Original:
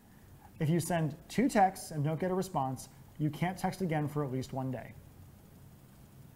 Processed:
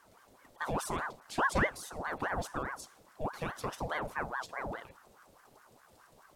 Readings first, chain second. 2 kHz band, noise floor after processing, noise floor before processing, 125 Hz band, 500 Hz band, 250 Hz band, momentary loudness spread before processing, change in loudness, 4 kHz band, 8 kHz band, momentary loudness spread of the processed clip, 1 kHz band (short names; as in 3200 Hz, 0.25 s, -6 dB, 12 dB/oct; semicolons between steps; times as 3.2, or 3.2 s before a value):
+7.5 dB, -63 dBFS, -58 dBFS, -10.0 dB, -3.0 dB, -9.0 dB, 10 LU, -2.5 dB, +1.0 dB, -0.5 dB, 11 LU, -2.0 dB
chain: graphic EQ 125/250/500/4000/8000 Hz -6/+7/+5/+8/+6 dB; ring modulator with a swept carrier 840 Hz, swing 65%, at 4.8 Hz; gain -4 dB